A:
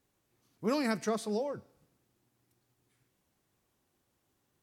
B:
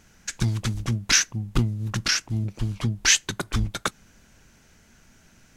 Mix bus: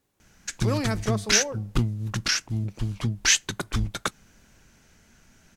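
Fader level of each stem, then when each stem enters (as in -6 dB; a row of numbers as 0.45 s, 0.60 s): +3.0 dB, -1.5 dB; 0.00 s, 0.20 s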